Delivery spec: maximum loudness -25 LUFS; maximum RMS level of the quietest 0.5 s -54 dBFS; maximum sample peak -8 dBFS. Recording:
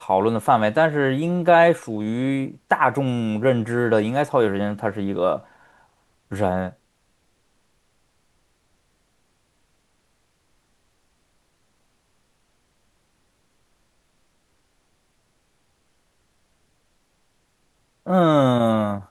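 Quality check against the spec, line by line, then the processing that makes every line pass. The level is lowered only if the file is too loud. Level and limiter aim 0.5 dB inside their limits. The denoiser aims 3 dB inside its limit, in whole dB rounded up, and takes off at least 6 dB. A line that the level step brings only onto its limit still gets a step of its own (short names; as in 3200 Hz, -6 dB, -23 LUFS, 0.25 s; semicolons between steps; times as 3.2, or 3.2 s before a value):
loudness -20.5 LUFS: fail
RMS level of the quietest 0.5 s -66 dBFS: OK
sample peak -3.0 dBFS: fail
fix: gain -5 dB; limiter -8.5 dBFS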